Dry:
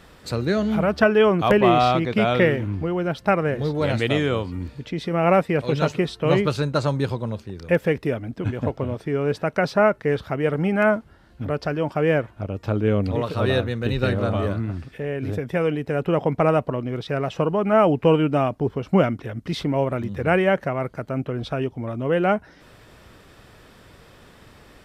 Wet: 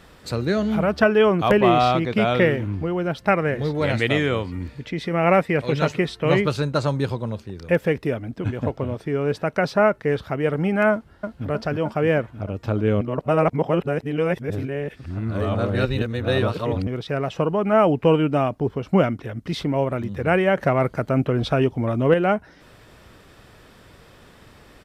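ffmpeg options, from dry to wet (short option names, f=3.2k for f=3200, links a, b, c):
-filter_complex "[0:a]asettb=1/sr,asplit=3[a][b][c];[a]atrim=end=3.234[d];[b]atrim=start=3.23:end=6.44,asetpts=PTS-STARTPTS,afade=t=in:d=0.004:c=qsin,afade=t=out:st=3.206:d=0.004:c=qsin,equalizer=f=2k:t=o:w=0.56:g=5.5[e];[c]atrim=start=6.436[f];[d][e]acrossfade=d=0.004:c1=hsin:c2=qsin[g];[g][f]acrossfade=d=0.004:c1=qsin:c2=hsin,asplit=2[h][i];[i]afade=t=in:st=10.92:d=0.01,afade=t=out:st=11.46:d=0.01,aecho=0:1:310|620|930|1240|1550|1860|2170|2480|2790|3100|3410|3720:0.630957|0.44167|0.309169|0.216418|0.151493|0.106045|0.0742315|0.0519621|0.0363734|0.0254614|0.017823|0.0124761[j];[h][j]amix=inputs=2:normalize=0,asettb=1/sr,asplit=3[k][l][m];[k]atrim=end=20.574[n];[l]atrim=start=20.57:end=22.14,asetpts=PTS-STARTPTS,afade=t=in:d=0.004:c=qsin,afade=t=out:st=1.566:d=0.004:c=qsin,acontrast=56[o];[m]atrim=start=22.136[p];[n][o]acrossfade=d=0.004:c1=hsin:c2=qsin[q];[q][p]acrossfade=d=0.004:c1=qsin:c2=hsin,asplit=3[r][s][t];[r]atrim=end=13.012[u];[s]atrim=start=13.008:end=16.872,asetpts=PTS-STARTPTS,areverse[v];[t]atrim=start=16.868[w];[u][v]acrossfade=d=0.004:c1=hsin:c2=hsin[x];[x][w]acrossfade=d=0.004:c1=hsin:c2=hsin"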